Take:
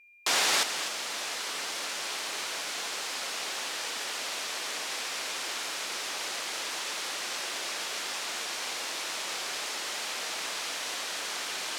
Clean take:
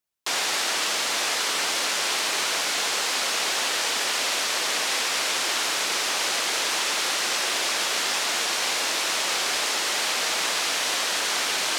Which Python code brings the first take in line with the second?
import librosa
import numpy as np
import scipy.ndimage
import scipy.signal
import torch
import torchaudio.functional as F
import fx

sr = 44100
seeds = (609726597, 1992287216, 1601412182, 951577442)

y = fx.notch(x, sr, hz=2400.0, q=30.0)
y = fx.fix_echo_inverse(y, sr, delay_ms=252, level_db=-11.0)
y = fx.fix_level(y, sr, at_s=0.63, step_db=10.0)